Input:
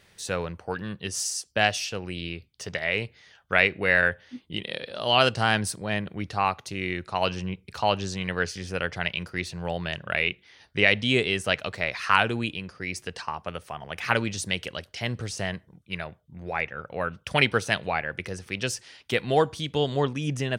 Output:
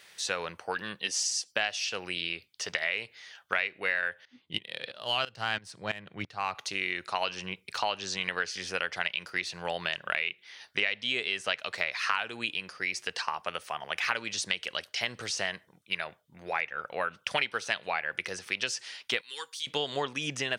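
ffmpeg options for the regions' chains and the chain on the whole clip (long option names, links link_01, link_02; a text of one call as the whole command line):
ffmpeg -i in.wav -filter_complex "[0:a]asettb=1/sr,asplit=3[link_01][link_02][link_03];[link_01]atrim=end=0.994[link_04];[link_02]atrim=start=0.99:end=1.52,asetpts=PTS-STARTPTS,afade=type=in:duration=0.004:curve=qsin,afade=type=out:start_time=0.526:duration=0.004:curve=qsin,highpass=frequency=120:width=0.5412,highpass=frequency=120:width=1.3066,equalizer=frequency=1300:width=3.3:gain=-6,aecho=1:1:3.8:0.35,atrim=end_sample=23373[link_05];[link_03]atrim=start=1.516[link_06];[link_04][link_05]acrossfade=duration=0.004:curve1=hsin:curve2=qsin[link_07];[link_07][link_06]acrossfade=duration=0.004:curve1=qsin:curve2=hsin,asettb=1/sr,asplit=3[link_08][link_09][link_10];[link_08]atrim=end=4.254[link_11];[link_09]atrim=start=4.25:end=6.55,asetpts=PTS-STARTPTS,afade=type=in:duration=0.004:curve=qsin,afade=type=out:start_time=2.296:duration=0.004:curve=qsin,equalizer=frequency=120:width_type=o:width=1.2:gain=11,adynamicsmooth=sensitivity=3.5:basefreq=6000,aeval=exprs='val(0)*pow(10,-18*if(lt(mod(-3*n/s,1),2*abs(-3)/1000),1-mod(-3*n/s,1)/(2*abs(-3)/1000),(mod(-3*n/s,1)-2*abs(-3)/1000)/(1-2*abs(-3)/1000))/20)':channel_layout=same[link_12];[link_10]atrim=start=6.546[link_13];[link_11][link_12]acrossfade=duration=0.004:curve1=hsin:curve2=qsin[link_14];[link_14][link_13]acrossfade=duration=0.004:curve1=qsin:curve2=hsin,asettb=1/sr,asplit=3[link_15][link_16][link_17];[link_15]atrim=end=19.214[link_18];[link_16]atrim=start=19.21:end=19.67,asetpts=PTS-STARTPTS,afade=type=in:duration=0.004:curve=qsin,afade=type=out:start_time=0.456:duration=0.004:curve=qsin,asuperstop=centerf=650:order=20:qfactor=2.3,aderivative[link_19];[link_17]atrim=start=19.666[link_20];[link_18][link_19]acrossfade=duration=0.004:curve1=hsin:curve2=qsin[link_21];[link_21][link_20]acrossfade=duration=0.004:curve1=qsin:curve2=hsin,acrossover=split=6900[link_22][link_23];[link_23]acompressor=threshold=-57dB:ratio=4:attack=1:release=60[link_24];[link_22][link_24]amix=inputs=2:normalize=0,highpass=frequency=1300:poles=1,acompressor=threshold=-33dB:ratio=5,volume=6.5dB" out.wav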